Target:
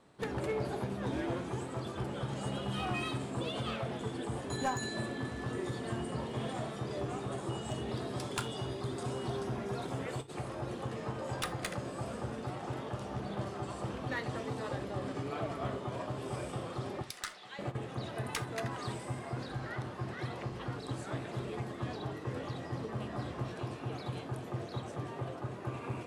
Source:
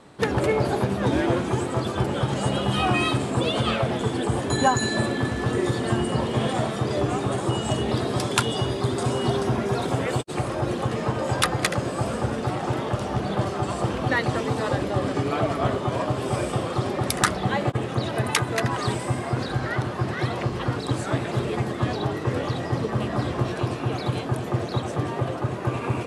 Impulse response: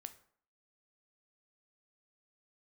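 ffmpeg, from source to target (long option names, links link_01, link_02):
-filter_complex "[0:a]asettb=1/sr,asplit=3[link_01][link_02][link_03];[link_01]atrim=end=17.024[link_04];[link_02]atrim=start=17.02:end=17.59,asetpts=PTS-STARTPTS,afade=type=in:duration=0.004:curve=qsin,afade=type=out:start_time=0.566:duration=0.004:curve=qsin,bandpass=frequency=4300:width_type=q:width=0.67:csg=0[link_05];[link_03]atrim=start=17.586[link_06];[link_04][link_05]acrossfade=duration=0.004:curve1=hsin:curve2=qsin[link_07];[link_07][link_06]acrossfade=duration=0.004:curve1=qsin:curve2=hsin,aeval=exprs='clip(val(0),-1,0.133)':channel_layout=same[link_08];[1:a]atrim=start_sample=2205,atrim=end_sample=3969[link_09];[link_08][link_09]afir=irnorm=-1:irlink=0,volume=-8dB"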